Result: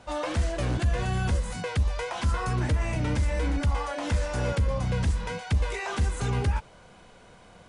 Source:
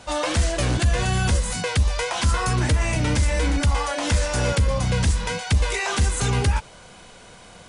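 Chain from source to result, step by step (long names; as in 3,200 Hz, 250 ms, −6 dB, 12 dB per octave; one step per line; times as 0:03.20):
high-shelf EQ 2,900 Hz −10 dB
level −5 dB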